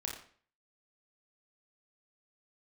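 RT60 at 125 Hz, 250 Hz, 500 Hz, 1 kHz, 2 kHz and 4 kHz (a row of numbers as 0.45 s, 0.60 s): 0.50 s, 0.50 s, 0.50 s, 0.45 s, 0.45 s, 0.40 s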